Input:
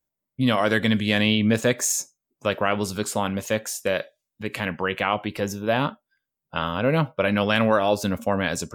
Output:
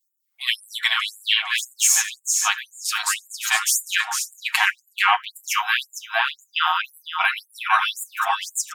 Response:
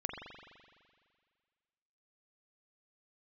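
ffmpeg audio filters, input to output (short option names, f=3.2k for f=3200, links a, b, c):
-filter_complex "[0:a]asplit=2[a][b];[b]adelay=456,lowpass=f=4.6k:p=1,volume=-3dB,asplit=2[c][d];[d]adelay=456,lowpass=f=4.6k:p=1,volume=0.3,asplit=2[e][f];[f]adelay=456,lowpass=f=4.6k:p=1,volume=0.3,asplit=2[g][h];[h]adelay=456,lowpass=f=4.6k:p=1,volume=0.3[i];[a][c][e][g][i]amix=inputs=5:normalize=0,asplit=2[j][k];[k]acompressor=threshold=-30dB:ratio=6,volume=-0.5dB[l];[j][l]amix=inputs=2:normalize=0,lowshelf=f=180:g=-8.5,aecho=1:1:6.4:0.94,dynaudnorm=f=110:g=5:m=11.5dB,afftfilt=real='re*gte(b*sr/1024,660*pow(7000/660,0.5+0.5*sin(2*PI*1.9*pts/sr)))':imag='im*gte(b*sr/1024,660*pow(7000/660,0.5+0.5*sin(2*PI*1.9*pts/sr)))':win_size=1024:overlap=0.75"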